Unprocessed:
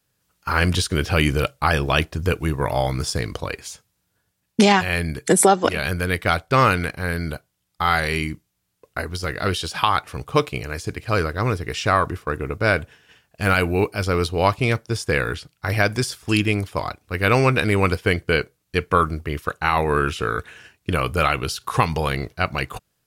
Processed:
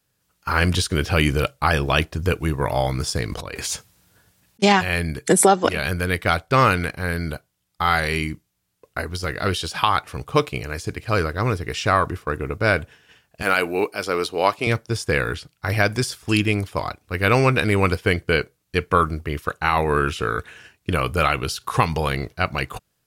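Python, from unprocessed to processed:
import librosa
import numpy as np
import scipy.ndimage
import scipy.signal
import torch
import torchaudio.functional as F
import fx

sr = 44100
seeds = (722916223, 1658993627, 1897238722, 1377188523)

y = fx.over_compress(x, sr, threshold_db=-37.0, ratio=-1.0, at=(3.27, 4.62), fade=0.02)
y = fx.highpass(y, sr, hz=290.0, slope=12, at=(13.42, 14.67))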